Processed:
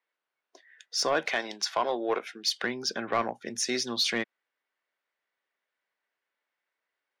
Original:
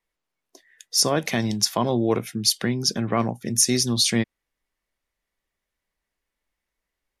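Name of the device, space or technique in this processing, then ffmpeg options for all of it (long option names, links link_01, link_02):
intercom: -filter_complex "[0:a]asettb=1/sr,asplit=3[link_01][link_02][link_03];[link_01]atrim=end=1.254[link_04];[link_02]atrim=start=1.25:end=2.6,asetpts=PTS-STARTPTS,afade=type=in:duration=0.004:curve=qsin,afade=type=out:start_time=1.346:duration=0.004:curve=qsin,highpass=350[link_05];[link_03]atrim=start=2.596[link_06];[link_04][link_05]acrossfade=duration=0.004:curve1=hsin:curve2=qsin[link_07];[link_07][link_06]acrossfade=duration=0.004:curve1=qsin:curve2=hsin,highpass=460,lowpass=3700,equalizer=frequency=1500:width_type=o:width=0.27:gain=6,asoftclip=type=tanh:threshold=-16dB"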